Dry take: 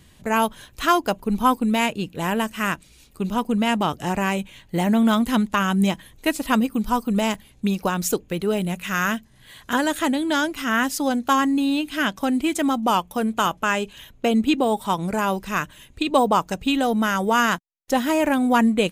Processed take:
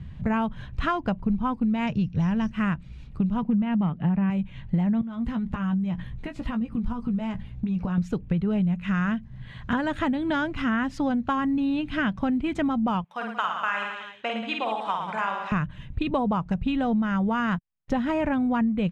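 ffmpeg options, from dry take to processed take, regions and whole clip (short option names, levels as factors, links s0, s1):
-filter_complex "[0:a]asettb=1/sr,asplit=3[s0][s1][s2];[s0]atrim=end=1.874[s3];[s1]atrim=start=1.87:end=2.51,asetpts=PTS-STARTPTS,afade=t=in:d=0.004:c=qsin,afade=t=out:st=0.636:d=0.004:c=qsin,asubboost=boost=10:cutoff=220,lowpass=f=5700:t=q:w=15[s4];[s2]atrim=start=2.506[s5];[s3][s4]acrossfade=d=0.004:c1=hsin:c2=qsin[s6];[s6][s5]acrossfade=d=0.004:c1=qsin:c2=hsin,asettb=1/sr,asplit=3[s7][s8][s9];[s7]atrim=end=3.424[s10];[s8]atrim=start=3.42:end=4.3,asetpts=PTS-STARTPTS,afade=t=in:d=0.004:c=qsin,afade=t=out:st=0.876:d=0.004:c=qsin,lowshelf=f=140:t=q:w=3:g=-6.5,volume=4.22,asoftclip=hard,volume=0.237,lowpass=f=3400:w=0.5412,lowpass=f=3400:w=1.3066[s11];[s9]atrim=start=4.296[s12];[s10][s11]acrossfade=d=0.004:c1=hsin:c2=qsin[s13];[s13][s12]acrossfade=d=0.004:c1=qsin:c2=hsin,asettb=1/sr,asplit=3[s14][s15][s16];[s14]atrim=end=5.014[s17];[s15]atrim=start=5.01:end=7.98,asetpts=PTS-STARTPTS,afade=t=in:d=0.004:c=qsin,afade=t=out:st=2.966:d=0.004:c=qsin,acompressor=threshold=0.0316:ratio=12:attack=3.2:release=140:knee=1:detection=peak,asplit=2[s18][s19];[s19]adelay=17,volume=0.398[s20];[s18][s20]amix=inputs=2:normalize=0,atrim=end_sample=130977[s21];[s16]atrim=start=7.976[s22];[s17][s21]acrossfade=d=0.004:c1=hsin:c2=qsin[s23];[s23][s22]acrossfade=d=0.004:c1=qsin:c2=hsin,asettb=1/sr,asplit=3[s24][s25][s26];[s24]atrim=end=13.044[s27];[s25]atrim=start=13.04:end=15.52,asetpts=PTS-STARTPTS,afade=t=in:d=0.004:c=qsin,afade=t=out:st=2.476:d=0.004:c=qsin,highpass=940,highshelf=f=8700:g=-4.5,aecho=1:1:50|110|182|268.4|372.1:0.631|0.398|0.251|0.158|0.1,atrim=end_sample=109368[s28];[s26]atrim=start=15.516[s29];[s27][s28]acrossfade=d=0.004:c1=hsin:c2=qsin[s30];[s30][s29]acrossfade=d=0.004:c1=qsin:c2=hsin,lowpass=2300,lowshelf=f=230:t=q:w=1.5:g=12.5,acompressor=threshold=0.0631:ratio=6,volume=1.19"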